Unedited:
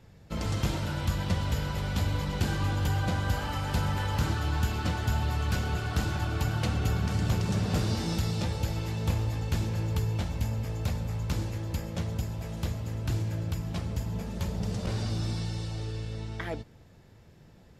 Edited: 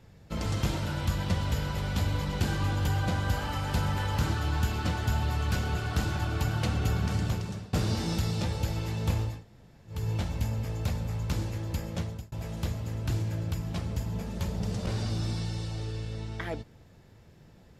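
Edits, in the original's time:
7.14–7.73 fade out, to -23.5 dB
9.33–9.98 room tone, crossfade 0.24 s
11.99–12.32 fade out

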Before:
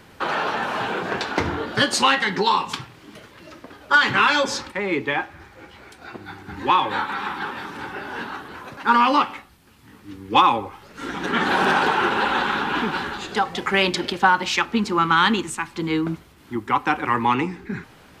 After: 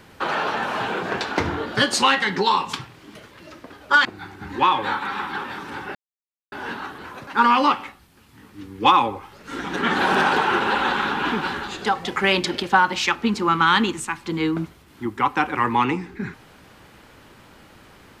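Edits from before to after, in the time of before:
4.05–6.12 cut
8.02 insert silence 0.57 s

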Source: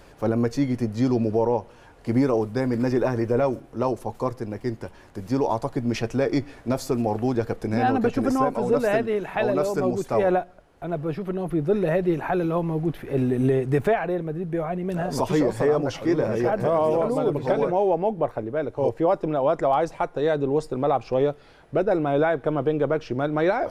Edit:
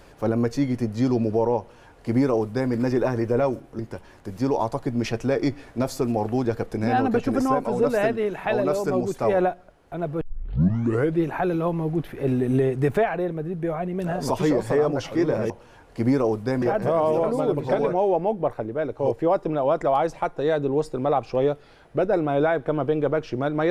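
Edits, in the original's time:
1.59–2.71 copy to 16.4
3.79–4.69 cut
11.11 tape start 1.02 s

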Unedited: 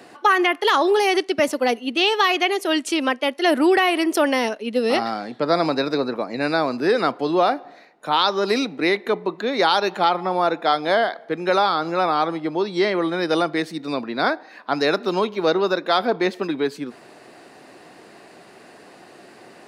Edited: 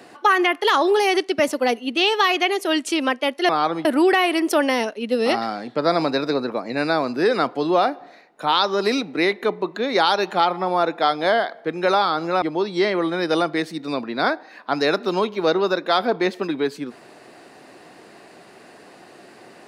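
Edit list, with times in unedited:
12.06–12.42 move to 3.49

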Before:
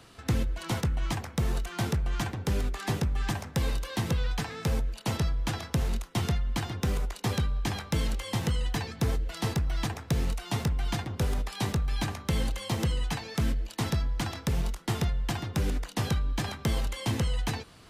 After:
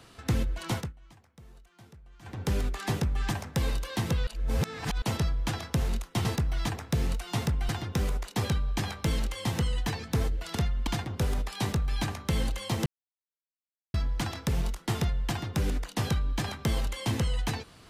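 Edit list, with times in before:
0.73–2.42 dip -24 dB, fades 0.20 s
4.27–5.02 reverse
6.25–6.57 swap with 9.43–10.87
12.86–13.94 mute

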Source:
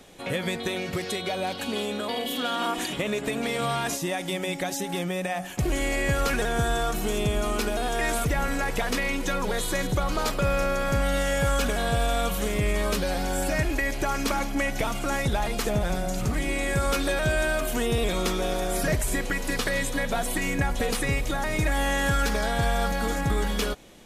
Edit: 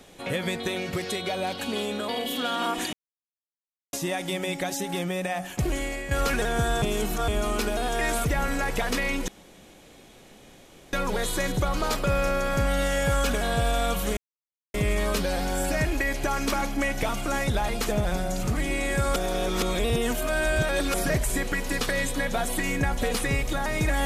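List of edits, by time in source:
2.93–3.93 mute
5.61–6.11 fade out, to -11.5 dB
6.82–7.28 reverse
9.28 insert room tone 1.65 s
12.52 insert silence 0.57 s
16.94–18.72 reverse

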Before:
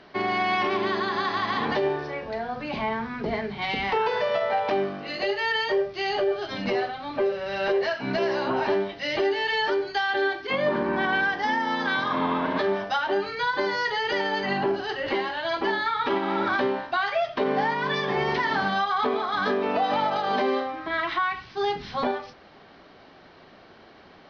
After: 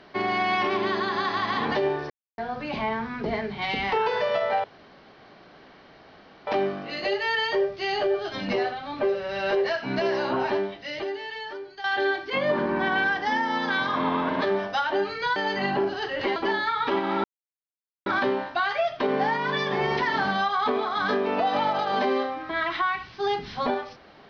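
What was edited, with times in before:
2.1–2.38 mute
4.64 insert room tone 1.83 s
8.54–10.01 fade out quadratic, to -13 dB
13.53–14.23 cut
15.23–15.55 cut
16.43 insert silence 0.82 s

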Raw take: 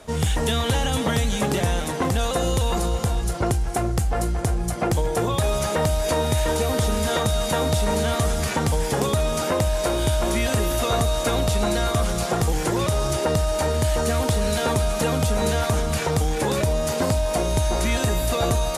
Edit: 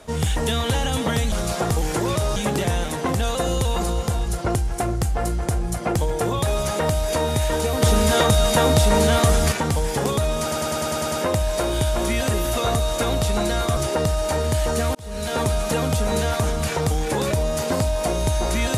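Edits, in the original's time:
6.78–8.48 gain +5 dB
9.38 stutter 0.10 s, 8 plays
12.03–13.07 move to 1.32
14.25–14.72 fade in

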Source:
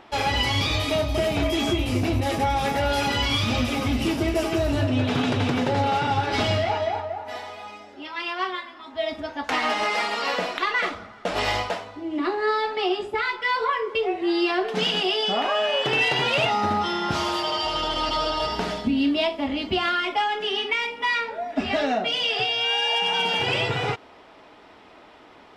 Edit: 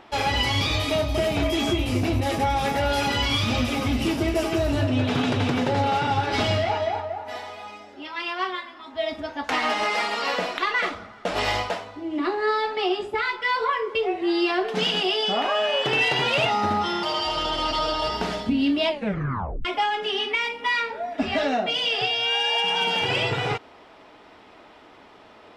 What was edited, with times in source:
17.03–17.41 cut
19.26 tape stop 0.77 s

